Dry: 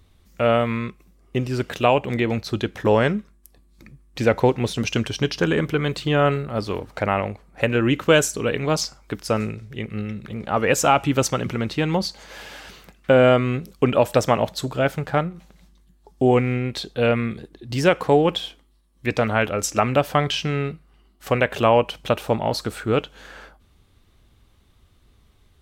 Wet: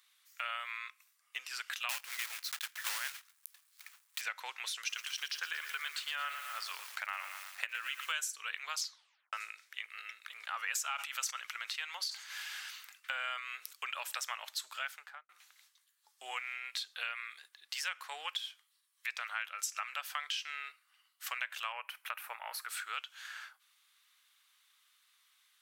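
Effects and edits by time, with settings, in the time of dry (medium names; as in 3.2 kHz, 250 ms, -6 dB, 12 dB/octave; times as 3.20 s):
1.89–4.22 s: block-companded coder 3-bit
4.77–8.12 s: bit-crushed delay 115 ms, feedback 55%, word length 6-bit, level -9.5 dB
8.83 s: tape stop 0.50 s
10.21–13.73 s: decay stretcher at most 110 dB/s
14.86–15.29 s: studio fade out
21.72–22.69 s: high-order bell 5 kHz -13 dB
whole clip: high-pass 1.3 kHz 24 dB/octave; treble shelf 7.6 kHz +5 dB; compression 3:1, threshold -35 dBFS; trim -2.5 dB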